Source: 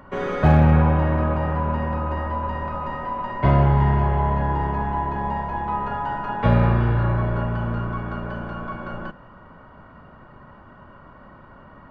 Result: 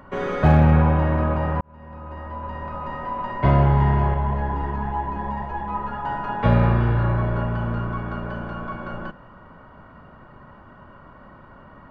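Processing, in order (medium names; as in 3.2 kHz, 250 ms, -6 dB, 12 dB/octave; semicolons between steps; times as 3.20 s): 1.61–3.23 s: fade in; 4.14–6.05 s: three-phase chorus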